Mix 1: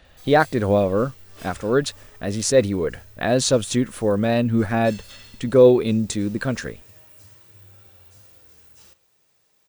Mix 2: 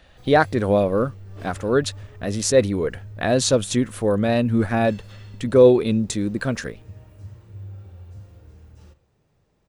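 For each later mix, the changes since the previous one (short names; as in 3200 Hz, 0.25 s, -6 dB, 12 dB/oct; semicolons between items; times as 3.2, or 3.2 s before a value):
background: add tilt -4.5 dB/oct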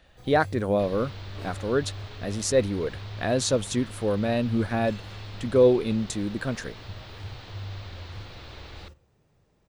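speech -5.5 dB; second sound: unmuted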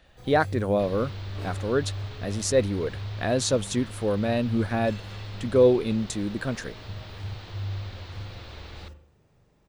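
first sound: send +11.0 dB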